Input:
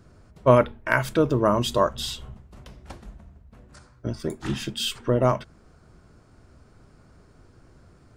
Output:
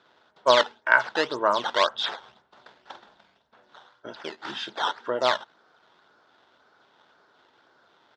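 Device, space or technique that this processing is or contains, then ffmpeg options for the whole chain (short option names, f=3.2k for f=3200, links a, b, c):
circuit-bent sampling toy: -filter_complex "[0:a]acrusher=samples=11:mix=1:aa=0.000001:lfo=1:lforange=17.6:lforate=1.9,highpass=540,equalizer=f=880:t=q:w=4:g=6,equalizer=f=1.5k:t=q:w=4:g=7,equalizer=f=2.4k:t=q:w=4:g=-4,equalizer=f=3.5k:t=q:w=4:g=9,lowpass=f=5.1k:w=0.5412,lowpass=f=5.1k:w=1.3066,highshelf=f=12k:g=5,asplit=3[a][b][c];[a]afade=t=out:st=2.93:d=0.02[d];[b]asplit=2[e][f];[f]adelay=46,volume=-8dB[g];[e][g]amix=inputs=2:normalize=0,afade=t=in:st=2.93:d=0.02,afade=t=out:st=4.12:d=0.02[h];[c]afade=t=in:st=4.12:d=0.02[i];[d][h][i]amix=inputs=3:normalize=0,volume=-1dB"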